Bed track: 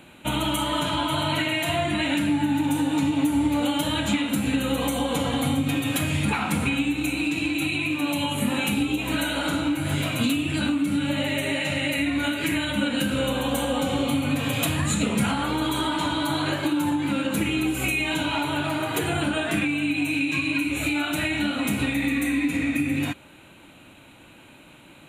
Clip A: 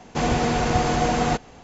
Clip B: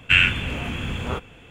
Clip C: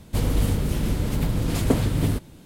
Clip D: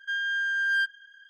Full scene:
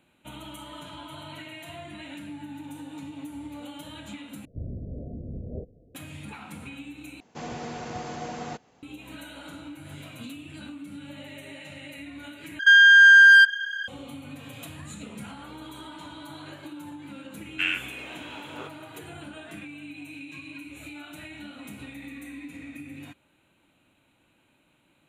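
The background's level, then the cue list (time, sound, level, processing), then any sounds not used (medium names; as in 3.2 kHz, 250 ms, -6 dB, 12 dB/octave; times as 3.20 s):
bed track -17 dB
4.45 s: replace with B -7.5 dB + steep low-pass 650 Hz 72 dB/octave
7.20 s: replace with A -14 dB + high-pass 110 Hz
12.59 s: replace with D -7 dB + loudness maximiser +27.5 dB
17.49 s: add B -10.5 dB + high-pass 280 Hz 24 dB/octave
not used: C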